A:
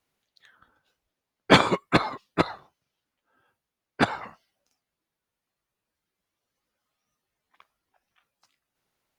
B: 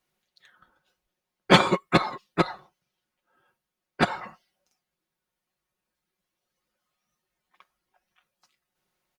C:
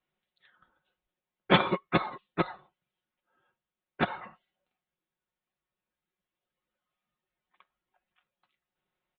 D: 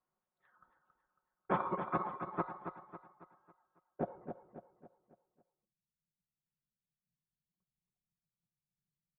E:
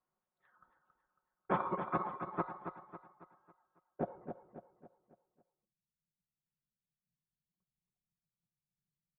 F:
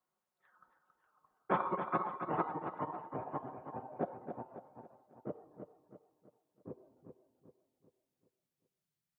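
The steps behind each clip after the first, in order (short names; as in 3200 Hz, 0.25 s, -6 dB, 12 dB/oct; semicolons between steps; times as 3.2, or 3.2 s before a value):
comb 5.5 ms, depth 56%; gain -1 dB
steep low-pass 3800 Hz 72 dB/oct; gain -5.5 dB
compressor 2:1, threshold -32 dBFS, peak gain reduction 9 dB; low-pass sweep 1100 Hz -> 150 Hz, 3.68–4.78; on a send: feedback echo 0.275 s, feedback 44%, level -8 dB; on the sum: gain -5.5 dB
nothing audible
low shelf 100 Hz -12 dB; echoes that change speed 0.503 s, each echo -3 st, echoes 2, each echo -6 dB; gain +1.5 dB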